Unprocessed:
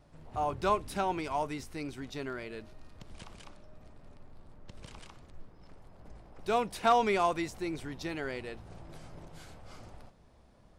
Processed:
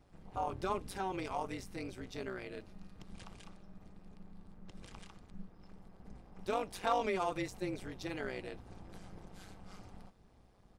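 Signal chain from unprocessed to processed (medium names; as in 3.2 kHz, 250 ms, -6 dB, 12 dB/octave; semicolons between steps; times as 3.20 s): comb 2.5 ms, depth 40%; in parallel at +1 dB: peak limiter -25 dBFS, peak gain reduction 11.5 dB; on the sum: AM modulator 190 Hz, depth 70%; trim -7.5 dB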